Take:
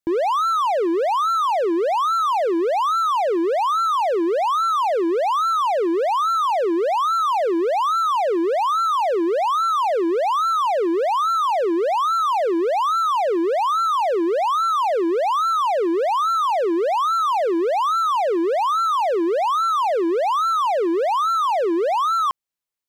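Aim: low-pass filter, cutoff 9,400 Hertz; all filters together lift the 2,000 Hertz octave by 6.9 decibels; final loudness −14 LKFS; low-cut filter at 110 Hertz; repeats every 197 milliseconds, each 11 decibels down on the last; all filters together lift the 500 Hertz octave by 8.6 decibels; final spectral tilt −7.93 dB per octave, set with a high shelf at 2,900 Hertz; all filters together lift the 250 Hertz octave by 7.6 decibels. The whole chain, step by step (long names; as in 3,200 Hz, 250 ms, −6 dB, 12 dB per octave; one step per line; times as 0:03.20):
high-pass filter 110 Hz
low-pass filter 9,400 Hz
parametric band 250 Hz +6.5 dB
parametric band 500 Hz +8.5 dB
parametric band 2,000 Hz +6.5 dB
high-shelf EQ 2,900 Hz +4 dB
repeating echo 197 ms, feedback 28%, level −11 dB
level −1 dB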